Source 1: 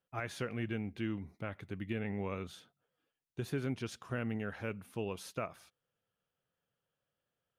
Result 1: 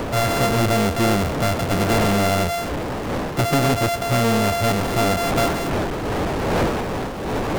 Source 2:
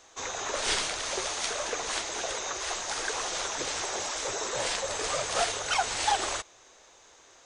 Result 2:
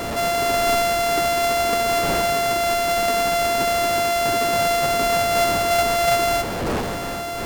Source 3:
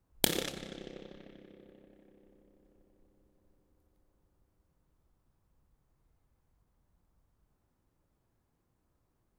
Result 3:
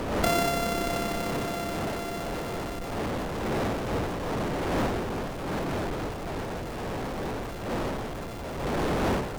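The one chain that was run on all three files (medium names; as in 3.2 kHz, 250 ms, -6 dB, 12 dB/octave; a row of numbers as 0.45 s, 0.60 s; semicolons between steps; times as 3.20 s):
sorted samples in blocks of 64 samples; wind noise 580 Hz -50 dBFS; power-law waveshaper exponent 0.35; peak normalisation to -12 dBFS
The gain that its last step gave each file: +11.5 dB, +1.0 dB, -7.5 dB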